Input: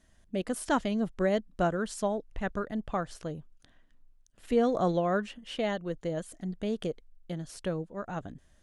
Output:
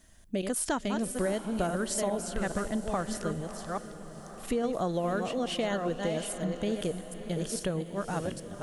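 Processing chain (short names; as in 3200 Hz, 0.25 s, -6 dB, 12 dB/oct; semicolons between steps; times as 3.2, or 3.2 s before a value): reverse delay 0.42 s, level -7 dB; high shelf 6800 Hz +11 dB; compressor, threshold -31 dBFS, peak gain reduction 10.5 dB; on a send: diffused feedback echo 0.626 s, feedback 50%, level -11.5 dB; on the sum: gain +4 dB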